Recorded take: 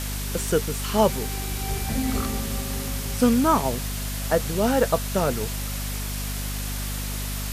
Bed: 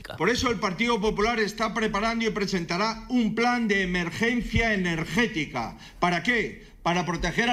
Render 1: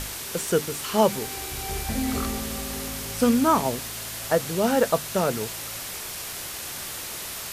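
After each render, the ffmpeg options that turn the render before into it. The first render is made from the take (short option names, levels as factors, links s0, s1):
-af "bandreject=f=50:t=h:w=6,bandreject=f=100:t=h:w=6,bandreject=f=150:t=h:w=6,bandreject=f=200:t=h:w=6,bandreject=f=250:t=h:w=6,bandreject=f=300:t=h:w=6"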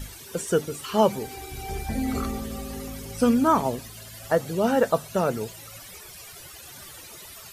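-af "afftdn=nr=15:nf=-35"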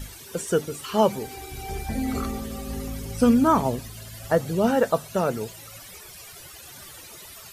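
-filter_complex "[0:a]asettb=1/sr,asplit=3[s0][s1][s2];[s0]atrim=end=2.674[s3];[s1]atrim=start=2.67:end=4.71,asetpts=PTS-STARTPTS,afade=t=in:d=0.004:c=qsin,afade=t=out:st=2.036:d=0.004:c=qsin,lowshelf=f=190:g=7[s4];[s2]atrim=start=4.706[s5];[s3][s4]acrossfade=d=0.004:c1=hsin:c2=qsin[s6];[s6][s5]acrossfade=d=0.004:c1=qsin:c2=hsin"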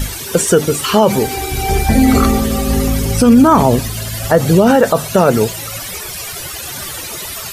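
-af "alimiter=level_in=7.5:limit=0.891:release=50:level=0:latency=1"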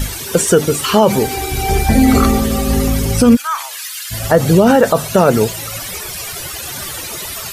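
-filter_complex "[0:a]asplit=3[s0][s1][s2];[s0]afade=t=out:st=3.35:d=0.02[s3];[s1]highpass=f=1400:w=0.5412,highpass=f=1400:w=1.3066,afade=t=in:st=3.35:d=0.02,afade=t=out:st=4.1:d=0.02[s4];[s2]afade=t=in:st=4.1:d=0.02[s5];[s3][s4][s5]amix=inputs=3:normalize=0"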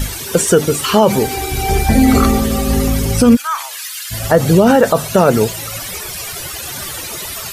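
-af anull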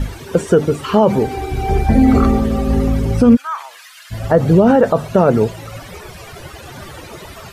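-af "lowpass=f=1000:p=1"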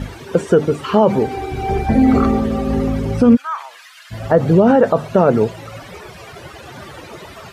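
-af "highpass=f=120:p=1,highshelf=f=6800:g=-9"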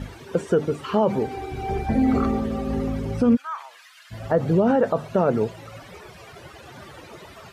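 -af "volume=0.422"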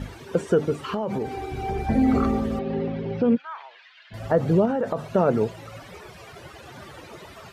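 -filter_complex "[0:a]asettb=1/sr,asplit=3[s0][s1][s2];[s0]atrim=end=0.754[s3];[s1]atrim=start=0.75:end=1.87,asetpts=PTS-STARTPTS,afade=t=in:d=0.004:c=qsin,afade=t=out:st=1.116:d=0.004:c=qsin,acompressor=threshold=0.0794:ratio=10:attack=3.2:release=140:knee=1:detection=peak[s4];[s2]atrim=start=1.866[s5];[s3][s4]acrossfade=d=0.004:c1=hsin:c2=qsin[s6];[s6][s5]acrossfade=d=0.004:c1=qsin:c2=hsin,asettb=1/sr,asplit=3[s7][s8][s9];[s7]atrim=end=2.594[s10];[s8]atrim=start=2.59:end=4.14,asetpts=PTS-STARTPTS,afade=t=in:d=0.004:c=qsin,afade=t=out:st=1.546:d=0.004:c=qsin,highpass=150,equalizer=f=170:t=q:w=4:g=4,equalizer=f=260:t=q:w=4:g=-5,equalizer=f=400:t=q:w=4:g=4,equalizer=f=1200:t=q:w=4:g=-8,lowpass=f=3900:w=0.5412,lowpass=f=3900:w=1.3066[s11];[s9]atrim=start=4.136[s12];[s10][s11]acrossfade=d=0.004:c1=hsin:c2=qsin[s13];[s13][s12]acrossfade=d=0.004:c1=qsin:c2=hsin,asettb=1/sr,asplit=3[s14][s15][s16];[s14]atrim=end=4.654[s17];[s15]atrim=start=4.65:end=5.05,asetpts=PTS-STARTPTS,afade=t=in:d=0.004:c=qsin,afade=t=out:st=0.396:d=0.004:c=qsin,acompressor=threshold=0.1:ratio=6:attack=3.2:release=140:knee=1:detection=peak[s18];[s16]atrim=start=5.046[s19];[s17][s18]acrossfade=d=0.004:c1=hsin:c2=qsin[s20];[s20][s19]acrossfade=d=0.004:c1=qsin:c2=hsin"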